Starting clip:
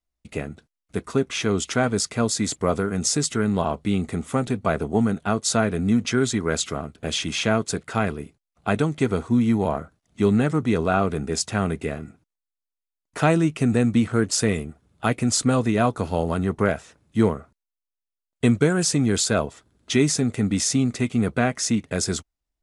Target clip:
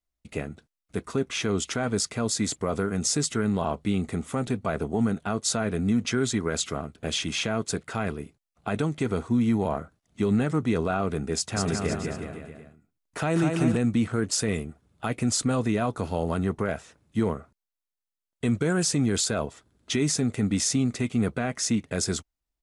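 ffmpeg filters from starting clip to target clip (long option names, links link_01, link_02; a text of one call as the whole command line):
ffmpeg -i in.wav -filter_complex "[0:a]alimiter=limit=-12.5dB:level=0:latency=1:release=23,asplit=3[link_01][link_02][link_03];[link_01]afade=type=out:start_time=11.55:duration=0.02[link_04];[link_02]aecho=1:1:200|370|514.5|637.3|741.7:0.631|0.398|0.251|0.158|0.1,afade=type=in:start_time=11.55:duration=0.02,afade=type=out:start_time=13.76:duration=0.02[link_05];[link_03]afade=type=in:start_time=13.76:duration=0.02[link_06];[link_04][link_05][link_06]amix=inputs=3:normalize=0,volume=-2.5dB" out.wav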